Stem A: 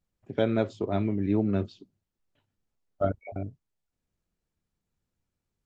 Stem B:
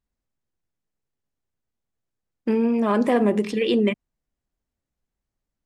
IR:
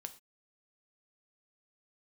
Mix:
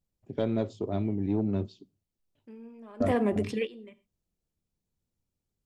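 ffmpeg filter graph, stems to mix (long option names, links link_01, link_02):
-filter_complex "[0:a]equalizer=frequency=1600:width=0.81:gain=-8.5,asoftclip=type=tanh:threshold=-16dB,volume=-2.5dB,asplit=3[link_01][link_02][link_03];[link_02]volume=-10dB[link_04];[1:a]volume=-7.5dB,asplit=2[link_05][link_06];[link_06]volume=-18.5dB[link_07];[link_03]apad=whole_len=249495[link_08];[link_05][link_08]sidechaingate=range=-33dB:threshold=-59dB:ratio=16:detection=peak[link_09];[2:a]atrim=start_sample=2205[link_10];[link_04][link_07]amix=inputs=2:normalize=0[link_11];[link_11][link_10]afir=irnorm=-1:irlink=0[link_12];[link_01][link_09][link_12]amix=inputs=3:normalize=0"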